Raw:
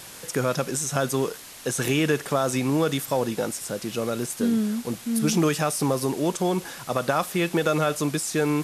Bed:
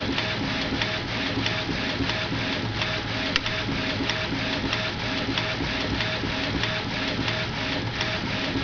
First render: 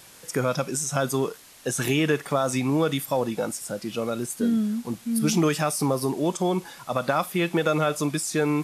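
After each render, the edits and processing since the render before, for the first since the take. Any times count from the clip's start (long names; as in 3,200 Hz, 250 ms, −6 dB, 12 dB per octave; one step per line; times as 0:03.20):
noise reduction from a noise print 7 dB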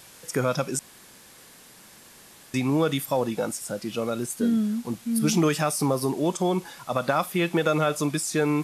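0:00.79–0:02.54: fill with room tone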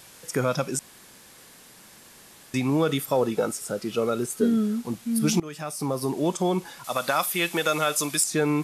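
0:02.88–0:04.83: hollow resonant body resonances 420/1,300 Hz, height 10 dB
0:05.40–0:06.20: fade in, from −22 dB
0:06.84–0:08.24: spectral tilt +3 dB per octave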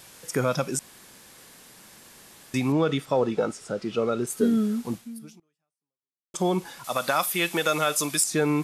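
0:02.72–0:04.27: high-frequency loss of the air 91 metres
0:04.95–0:06.34: fade out exponential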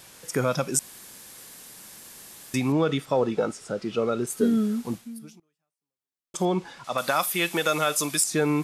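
0:00.74–0:02.56: high-shelf EQ 5,600 Hz +8.5 dB
0:06.45–0:06.98: high-frequency loss of the air 86 metres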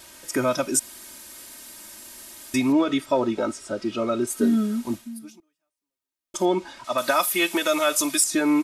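comb filter 3.2 ms, depth 93%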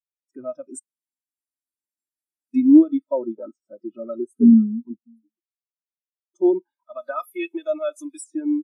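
automatic gain control gain up to 5.5 dB
every bin expanded away from the loudest bin 2.5 to 1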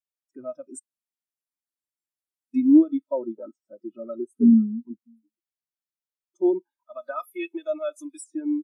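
level −3.5 dB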